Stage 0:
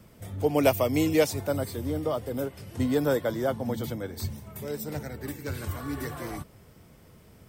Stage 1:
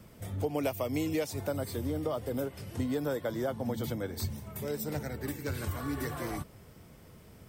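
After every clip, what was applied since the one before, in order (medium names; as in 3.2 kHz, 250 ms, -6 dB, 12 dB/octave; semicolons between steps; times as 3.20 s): compression 5:1, threshold -29 dBFS, peak gain reduction 12.5 dB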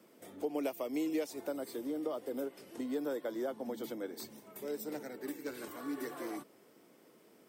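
ladder high-pass 250 Hz, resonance 40%; trim +1.5 dB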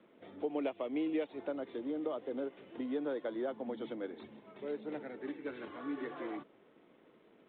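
G.726 40 kbps 8 kHz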